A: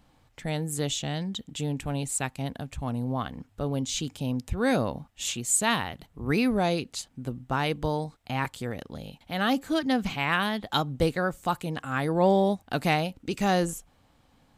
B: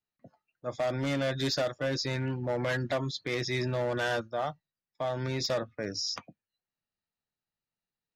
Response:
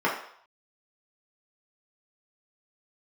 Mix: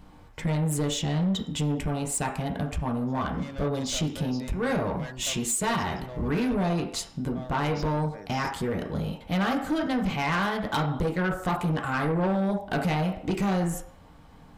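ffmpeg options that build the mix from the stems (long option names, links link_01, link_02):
-filter_complex "[0:a]lowshelf=frequency=180:gain=11.5,acompressor=threshold=-26dB:ratio=6,volume=2.5dB,asplit=2[link_01][link_02];[link_02]volume=-11.5dB[link_03];[1:a]adelay=2350,volume=-10dB[link_04];[2:a]atrim=start_sample=2205[link_05];[link_03][link_05]afir=irnorm=-1:irlink=0[link_06];[link_01][link_04][link_06]amix=inputs=3:normalize=0,asoftclip=type=tanh:threshold=-21dB"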